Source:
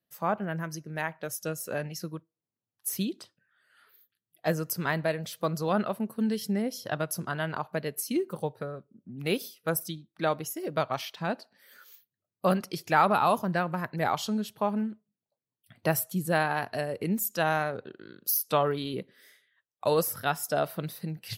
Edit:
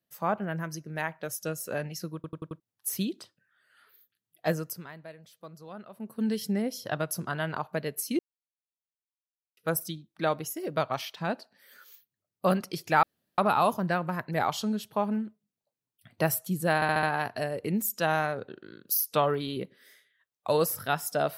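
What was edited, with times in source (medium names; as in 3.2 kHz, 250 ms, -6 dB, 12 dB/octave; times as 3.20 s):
2.15 s: stutter in place 0.09 s, 5 plays
4.50–6.29 s: dip -17 dB, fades 0.38 s linear
8.19–9.57 s: mute
13.03 s: insert room tone 0.35 s
16.40 s: stutter 0.07 s, 5 plays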